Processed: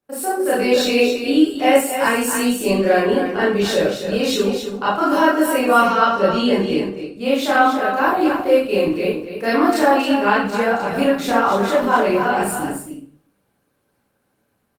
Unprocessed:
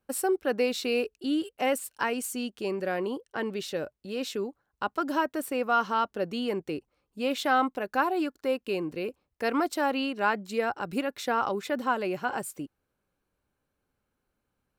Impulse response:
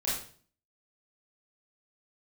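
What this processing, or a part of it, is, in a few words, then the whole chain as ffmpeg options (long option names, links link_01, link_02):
far-field microphone of a smart speaker: -filter_complex "[0:a]asettb=1/sr,asplit=3[link_01][link_02][link_03];[link_01]atrim=end=5.804[link_04];[link_02]atrim=start=5.8:end=7.22,asetpts=PTS-STARTPTS,afade=type=in:duration=0.004:curve=qsin,afade=type=out:start_time=1.416:duration=0.004:curve=qsin,lowpass=11000[link_05];[link_03]atrim=start=7.216[link_06];[link_04][link_05]acrossfade=duration=0.004:curve1=hsin:curve2=qsin[link_07];[link_07][link_06]acrossfade=duration=0.004:curve1=qsin:curve2=hsin,aecho=1:1:271:0.398[link_08];[1:a]atrim=start_sample=2205[link_09];[link_08][link_09]afir=irnorm=-1:irlink=0,highpass=frequency=98:width=0.5412,highpass=frequency=98:width=1.3066,dynaudnorm=framelen=210:gausssize=5:maxgain=8dB" -ar 48000 -c:a libopus -b:a 24k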